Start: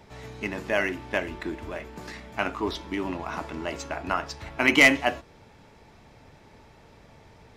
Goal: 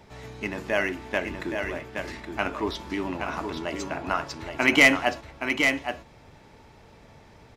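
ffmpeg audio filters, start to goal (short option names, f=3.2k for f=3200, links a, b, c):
-af "aecho=1:1:821:0.501"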